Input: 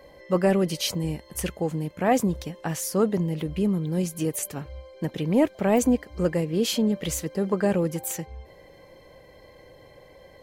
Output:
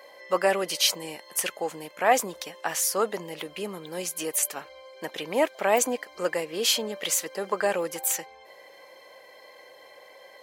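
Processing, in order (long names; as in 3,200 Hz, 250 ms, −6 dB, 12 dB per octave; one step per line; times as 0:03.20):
high-pass filter 720 Hz 12 dB per octave
level +5.5 dB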